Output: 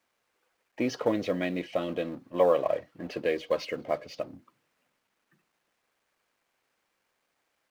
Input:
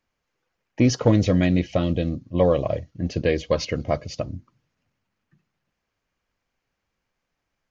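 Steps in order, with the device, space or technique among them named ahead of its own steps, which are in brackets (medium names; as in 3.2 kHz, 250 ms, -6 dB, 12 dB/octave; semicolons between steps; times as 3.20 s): phone line with mismatched companding (band-pass 350–3300 Hz; companding laws mixed up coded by mu); 1.88–3.20 s: peaking EQ 1.2 kHz +6 dB 2 oct; trim -5 dB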